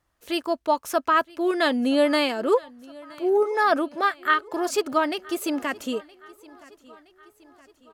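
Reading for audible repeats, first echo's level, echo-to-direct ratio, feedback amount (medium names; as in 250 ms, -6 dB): 3, -23.0 dB, -21.5 dB, 53%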